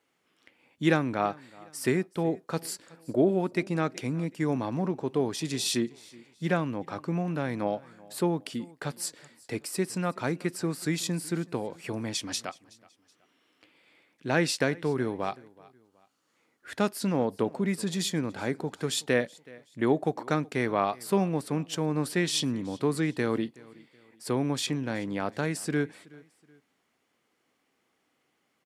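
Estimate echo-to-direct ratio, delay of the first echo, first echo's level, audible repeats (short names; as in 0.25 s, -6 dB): -22.5 dB, 0.374 s, -23.0 dB, 2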